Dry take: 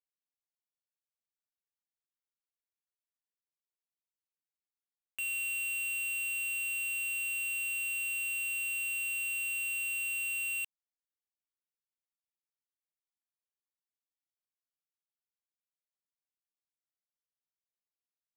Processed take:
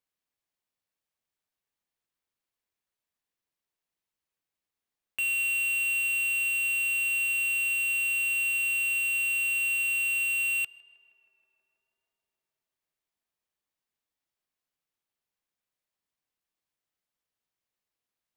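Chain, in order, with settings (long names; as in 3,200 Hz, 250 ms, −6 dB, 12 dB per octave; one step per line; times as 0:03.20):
bass and treble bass +1 dB, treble −5 dB
notch filter 1,400 Hz, Q 24
on a send: tape delay 159 ms, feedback 88%, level −20 dB, low-pass 2,500 Hz
on the sum: level +8.5 dB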